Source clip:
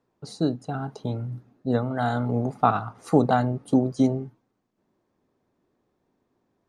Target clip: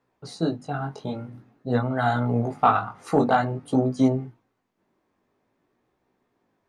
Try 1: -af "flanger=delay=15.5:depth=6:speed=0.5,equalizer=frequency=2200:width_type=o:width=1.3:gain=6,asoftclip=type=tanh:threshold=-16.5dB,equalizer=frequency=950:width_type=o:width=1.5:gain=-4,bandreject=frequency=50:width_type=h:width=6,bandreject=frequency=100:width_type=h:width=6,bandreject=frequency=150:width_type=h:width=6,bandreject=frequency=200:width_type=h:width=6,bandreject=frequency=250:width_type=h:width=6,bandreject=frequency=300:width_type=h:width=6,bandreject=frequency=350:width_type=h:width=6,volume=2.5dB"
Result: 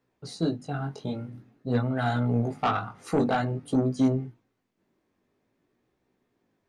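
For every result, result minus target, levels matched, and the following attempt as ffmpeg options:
soft clipping: distortion +11 dB; 1,000 Hz band −3.5 dB
-af "flanger=delay=15.5:depth=6:speed=0.5,equalizer=frequency=2200:width_type=o:width=1.3:gain=6,asoftclip=type=tanh:threshold=-8.5dB,equalizer=frequency=950:width_type=o:width=1.5:gain=-4,bandreject=frequency=50:width_type=h:width=6,bandreject=frequency=100:width_type=h:width=6,bandreject=frequency=150:width_type=h:width=6,bandreject=frequency=200:width_type=h:width=6,bandreject=frequency=250:width_type=h:width=6,bandreject=frequency=300:width_type=h:width=6,bandreject=frequency=350:width_type=h:width=6,volume=2.5dB"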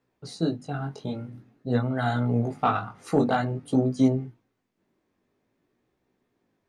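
1,000 Hz band −3.5 dB
-af "flanger=delay=15.5:depth=6:speed=0.5,equalizer=frequency=2200:width_type=o:width=1.3:gain=6,asoftclip=type=tanh:threshold=-8.5dB,equalizer=frequency=950:width_type=o:width=1.5:gain=2.5,bandreject=frequency=50:width_type=h:width=6,bandreject=frequency=100:width_type=h:width=6,bandreject=frequency=150:width_type=h:width=6,bandreject=frequency=200:width_type=h:width=6,bandreject=frequency=250:width_type=h:width=6,bandreject=frequency=300:width_type=h:width=6,bandreject=frequency=350:width_type=h:width=6,volume=2.5dB"

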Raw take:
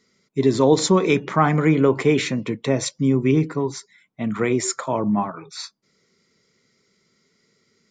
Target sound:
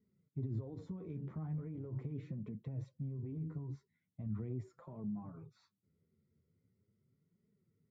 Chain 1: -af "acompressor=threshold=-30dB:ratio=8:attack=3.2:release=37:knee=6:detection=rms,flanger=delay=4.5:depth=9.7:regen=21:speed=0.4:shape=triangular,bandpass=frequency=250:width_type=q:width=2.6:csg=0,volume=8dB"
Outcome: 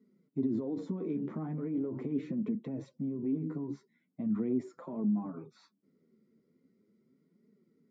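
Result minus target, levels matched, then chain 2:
125 Hz band −10.0 dB
-af "acompressor=threshold=-30dB:ratio=8:attack=3.2:release=37:knee=6:detection=rms,flanger=delay=4.5:depth=9.7:regen=21:speed=0.4:shape=triangular,bandpass=frequency=90:width_type=q:width=2.6:csg=0,volume=8dB"

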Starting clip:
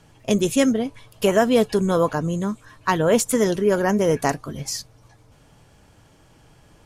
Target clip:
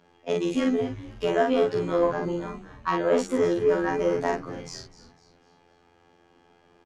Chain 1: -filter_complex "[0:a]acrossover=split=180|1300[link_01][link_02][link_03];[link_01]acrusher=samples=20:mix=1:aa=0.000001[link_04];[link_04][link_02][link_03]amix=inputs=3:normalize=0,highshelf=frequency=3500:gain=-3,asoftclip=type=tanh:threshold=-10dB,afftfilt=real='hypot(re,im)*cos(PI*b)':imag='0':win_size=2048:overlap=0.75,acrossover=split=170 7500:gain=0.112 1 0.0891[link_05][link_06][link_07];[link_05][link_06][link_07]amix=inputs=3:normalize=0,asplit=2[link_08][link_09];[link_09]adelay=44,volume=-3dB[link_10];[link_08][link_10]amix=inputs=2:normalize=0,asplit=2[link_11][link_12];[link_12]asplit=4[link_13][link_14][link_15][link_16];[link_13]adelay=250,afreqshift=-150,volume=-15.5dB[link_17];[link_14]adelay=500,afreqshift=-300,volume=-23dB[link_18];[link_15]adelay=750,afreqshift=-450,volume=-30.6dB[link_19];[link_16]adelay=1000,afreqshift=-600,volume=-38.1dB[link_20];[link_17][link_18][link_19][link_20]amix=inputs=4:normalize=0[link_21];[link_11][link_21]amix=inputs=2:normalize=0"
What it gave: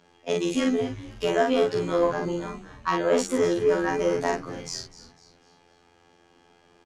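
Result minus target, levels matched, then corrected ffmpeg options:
8,000 Hz band +7.0 dB
-filter_complex "[0:a]acrossover=split=180|1300[link_01][link_02][link_03];[link_01]acrusher=samples=20:mix=1:aa=0.000001[link_04];[link_04][link_02][link_03]amix=inputs=3:normalize=0,highshelf=frequency=3500:gain=-12,asoftclip=type=tanh:threshold=-10dB,afftfilt=real='hypot(re,im)*cos(PI*b)':imag='0':win_size=2048:overlap=0.75,acrossover=split=170 7500:gain=0.112 1 0.0891[link_05][link_06][link_07];[link_05][link_06][link_07]amix=inputs=3:normalize=0,asplit=2[link_08][link_09];[link_09]adelay=44,volume=-3dB[link_10];[link_08][link_10]amix=inputs=2:normalize=0,asplit=2[link_11][link_12];[link_12]asplit=4[link_13][link_14][link_15][link_16];[link_13]adelay=250,afreqshift=-150,volume=-15.5dB[link_17];[link_14]adelay=500,afreqshift=-300,volume=-23dB[link_18];[link_15]adelay=750,afreqshift=-450,volume=-30.6dB[link_19];[link_16]adelay=1000,afreqshift=-600,volume=-38.1dB[link_20];[link_17][link_18][link_19][link_20]amix=inputs=4:normalize=0[link_21];[link_11][link_21]amix=inputs=2:normalize=0"

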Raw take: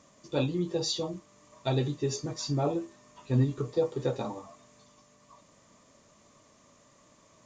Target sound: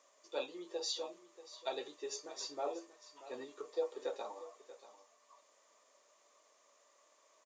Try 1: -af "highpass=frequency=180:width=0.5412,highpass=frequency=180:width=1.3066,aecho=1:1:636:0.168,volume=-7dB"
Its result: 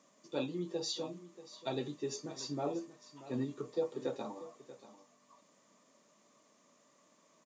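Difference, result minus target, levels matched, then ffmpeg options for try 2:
250 Hz band +10.0 dB
-af "highpass=frequency=440:width=0.5412,highpass=frequency=440:width=1.3066,aecho=1:1:636:0.168,volume=-7dB"

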